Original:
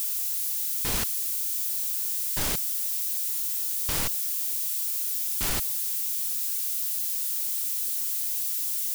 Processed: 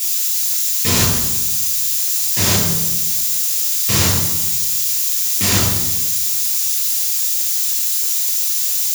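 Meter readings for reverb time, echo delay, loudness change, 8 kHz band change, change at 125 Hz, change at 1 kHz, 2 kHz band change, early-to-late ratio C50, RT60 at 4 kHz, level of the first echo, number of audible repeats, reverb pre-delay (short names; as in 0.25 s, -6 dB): 1.1 s, none, +11.0 dB, +13.0 dB, +20.0 dB, +12.5 dB, +13.0 dB, 2.5 dB, 0.75 s, none, none, 3 ms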